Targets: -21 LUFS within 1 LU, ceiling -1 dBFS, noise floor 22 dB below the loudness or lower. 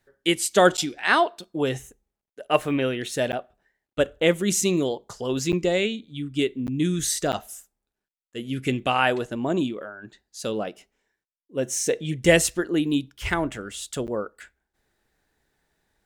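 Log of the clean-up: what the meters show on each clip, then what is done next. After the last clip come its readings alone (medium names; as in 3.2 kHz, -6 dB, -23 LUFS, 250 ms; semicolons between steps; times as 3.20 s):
dropouts 6; longest dropout 9.2 ms; loudness -24.5 LUFS; peak level -2.5 dBFS; loudness target -21.0 LUFS
-> interpolate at 0.77/3.32/5.52/6.67/7.32/14.07 s, 9.2 ms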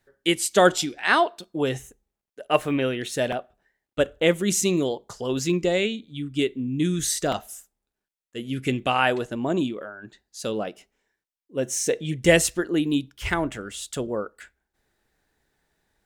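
dropouts 0; loudness -24.5 LUFS; peak level -2.5 dBFS; loudness target -21.0 LUFS
-> trim +3.5 dB; peak limiter -1 dBFS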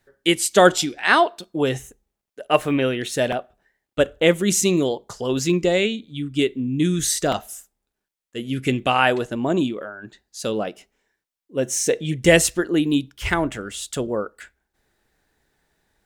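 loudness -21.0 LUFS; peak level -1.0 dBFS; noise floor -83 dBFS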